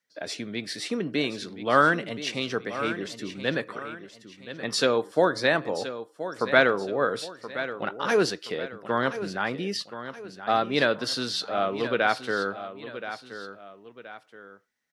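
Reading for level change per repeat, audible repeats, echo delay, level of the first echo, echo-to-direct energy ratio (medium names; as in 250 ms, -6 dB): -7.5 dB, 2, 1025 ms, -12.0 dB, -11.5 dB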